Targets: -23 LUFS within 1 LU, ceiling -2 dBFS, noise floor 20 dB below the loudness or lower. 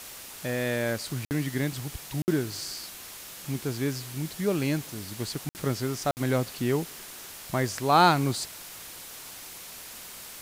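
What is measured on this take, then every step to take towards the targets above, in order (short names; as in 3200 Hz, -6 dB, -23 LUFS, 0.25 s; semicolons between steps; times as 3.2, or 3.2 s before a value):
dropouts 4; longest dropout 59 ms; noise floor -44 dBFS; noise floor target -49 dBFS; loudness -28.5 LUFS; peak -8.0 dBFS; loudness target -23.0 LUFS
-> interpolate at 1.25/2.22/5.49/6.11, 59 ms; noise print and reduce 6 dB; gain +5.5 dB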